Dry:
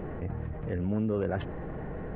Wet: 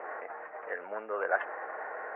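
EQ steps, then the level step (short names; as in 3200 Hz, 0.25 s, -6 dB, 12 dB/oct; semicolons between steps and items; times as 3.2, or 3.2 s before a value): HPF 630 Hz 24 dB/oct; steep low-pass 2200 Hz 36 dB/oct; dynamic EQ 1500 Hz, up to +5 dB, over -57 dBFS, Q 2.1; +7.0 dB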